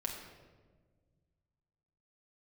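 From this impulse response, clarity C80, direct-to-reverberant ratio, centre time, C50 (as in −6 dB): 6.0 dB, −0.5 dB, 45 ms, 4.5 dB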